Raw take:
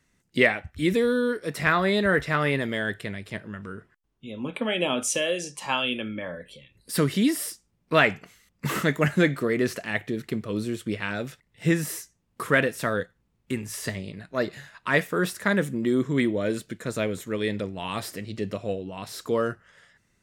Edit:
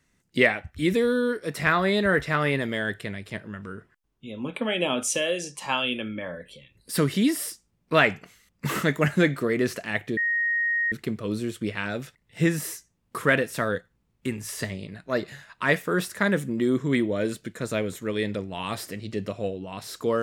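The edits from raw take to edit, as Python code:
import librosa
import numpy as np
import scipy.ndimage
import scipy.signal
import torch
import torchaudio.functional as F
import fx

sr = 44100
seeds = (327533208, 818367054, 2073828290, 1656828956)

y = fx.edit(x, sr, fx.insert_tone(at_s=10.17, length_s=0.75, hz=1870.0, db=-21.5), tone=tone)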